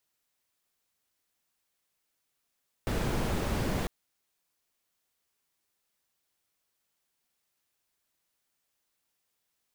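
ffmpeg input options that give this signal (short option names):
-f lavfi -i "anoisesrc=c=brown:a=0.157:d=1:r=44100:seed=1"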